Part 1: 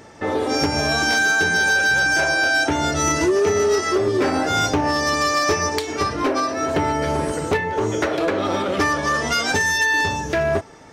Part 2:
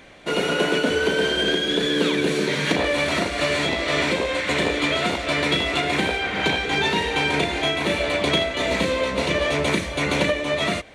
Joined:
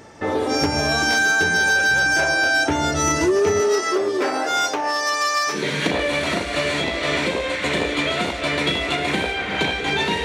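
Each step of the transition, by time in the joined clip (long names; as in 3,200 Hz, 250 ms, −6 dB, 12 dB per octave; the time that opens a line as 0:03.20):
part 1
0:03.60–0:05.64: high-pass filter 240 Hz → 930 Hz
0:05.55: continue with part 2 from 0:02.40, crossfade 0.18 s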